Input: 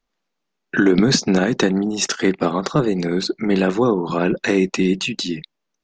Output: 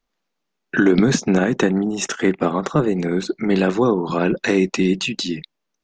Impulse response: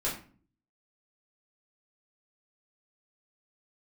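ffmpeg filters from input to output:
-filter_complex "[0:a]asettb=1/sr,asplit=3[s0][s1][s2];[s0]atrim=end=1.104[s3];[s1]atrim=start=1.1:end=3.29,asetpts=PTS-STARTPTS,afade=t=in:d=0.004:c=qsin,afade=t=out:st=2.186:d=0.004:c=qsin,equalizer=f=4600:t=o:w=0.48:g=-13[s4];[s2]atrim=start=3.286[s5];[s3][s4]acrossfade=d=0.004:c1=hsin:c2=qsin[s6];[s6][s5]acrossfade=d=0.004:c1=qsin:c2=hsin"

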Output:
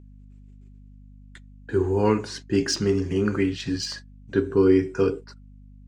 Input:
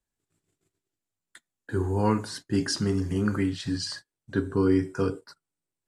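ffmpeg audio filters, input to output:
-af "adynamicsmooth=sensitivity=3:basefreq=6200,aeval=exprs='val(0)+0.00501*(sin(2*PI*50*n/s)+sin(2*PI*2*50*n/s)/2+sin(2*PI*3*50*n/s)/3+sin(2*PI*4*50*n/s)/4+sin(2*PI*5*50*n/s)/5)':c=same,equalizer=f=400:t=o:w=0.67:g=8,equalizer=f=2500:t=o:w=0.67:g=9,equalizer=f=6300:t=o:w=0.67:g=7"

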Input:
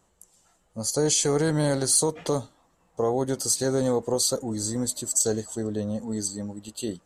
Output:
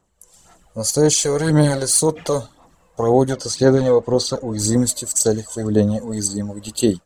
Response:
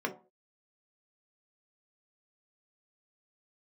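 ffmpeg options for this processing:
-filter_complex "[0:a]asettb=1/sr,asplit=3[s0][s1][s2];[s0]atrim=end=3.334[s3];[s1]atrim=start=3.33:end=4.59,asetpts=PTS-STARTPTS,afade=t=in:d=0.004:c=qsin,afade=t=out:st=1.256:d=0.004:c=qsin,lowpass=4100[s4];[s2]atrim=start=4.586[s5];[s3][s4]acrossfade=d=0.004:c1=hsin:c2=qsin[s6];[s6][s5]acrossfade=d=0.004:c1=qsin:c2=hsin,dynaudnorm=f=170:g=3:m=6.31,aphaser=in_gain=1:out_gain=1:delay=2:decay=0.51:speed=1.9:type=sinusoidal,volume=0.531"

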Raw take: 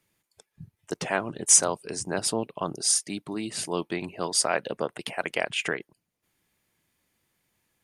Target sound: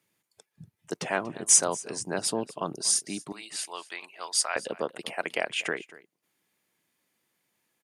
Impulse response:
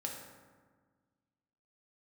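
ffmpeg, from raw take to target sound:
-af "asetnsamples=n=441:p=0,asendcmd='3.32 highpass f 1000;4.56 highpass f 190',highpass=130,aecho=1:1:238:0.106,volume=0.841"

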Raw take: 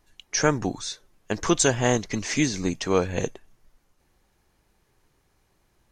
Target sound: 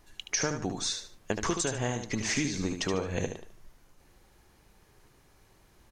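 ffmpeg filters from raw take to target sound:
-filter_complex "[0:a]acompressor=threshold=0.0251:ratio=12,asplit=2[s0][s1];[s1]aecho=0:1:74|148|222:0.447|0.125|0.035[s2];[s0][s2]amix=inputs=2:normalize=0,volume=1.78"

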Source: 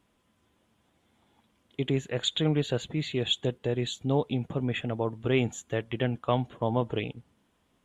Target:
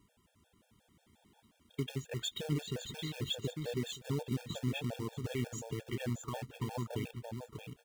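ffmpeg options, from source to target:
-filter_complex "[0:a]bass=f=250:g=5,treble=f=4000:g=5,alimiter=limit=0.126:level=0:latency=1:release=37,acompressor=threshold=0.00562:ratio=1.5,acrusher=bits=3:mode=log:mix=0:aa=0.000001,asplit=2[s0][s1];[s1]aecho=0:1:624|1248|1872|2496:0.473|0.137|0.0398|0.0115[s2];[s0][s2]amix=inputs=2:normalize=0,afftfilt=real='re*gt(sin(2*PI*5.6*pts/sr)*(1-2*mod(floor(b*sr/1024/460),2)),0)':imag='im*gt(sin(2*PI*5.6*pts/sr)*(1-2*mod(floor(b*sr/1024/460),2)),0)':win_size=1024:overlap=0.75"

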